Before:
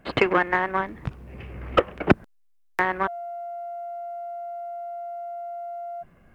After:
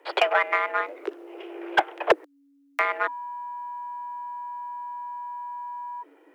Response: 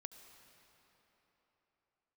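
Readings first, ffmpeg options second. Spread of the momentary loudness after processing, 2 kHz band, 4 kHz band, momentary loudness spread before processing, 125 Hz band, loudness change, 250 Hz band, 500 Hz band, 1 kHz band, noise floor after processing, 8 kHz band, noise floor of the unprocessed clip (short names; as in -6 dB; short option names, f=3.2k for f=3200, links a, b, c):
14 LU, +0.5 dB, +2.5 dB, 15 LU, under -25 dB, -0.5 dB, -11.5 dB, -2.0 dB, +1.0 dB, -61 dBFS, n/a, -60 dBFS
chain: -af "afreqshift=280,volume=8dB,asoftclip=hard,volume=-8dB,volume=-1dB"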